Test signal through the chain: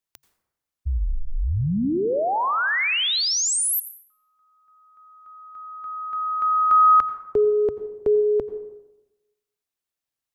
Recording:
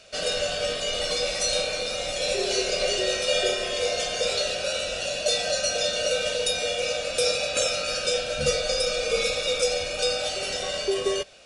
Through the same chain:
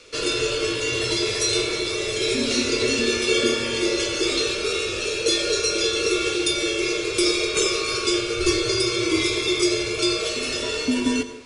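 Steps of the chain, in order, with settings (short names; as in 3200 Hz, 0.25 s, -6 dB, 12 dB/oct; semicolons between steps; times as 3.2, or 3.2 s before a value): frequency shift -140 Hz; plate-style reverb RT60 1 s, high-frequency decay 0.5×, pre-delay 75 ms, DRR 11.5 dB; gain +3 dB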